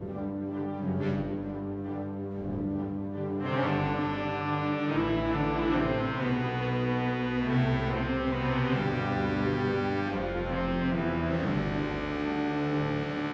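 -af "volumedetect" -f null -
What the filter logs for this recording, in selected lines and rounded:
mean_volume: -29.4 dB
max_volume: -15.7 dB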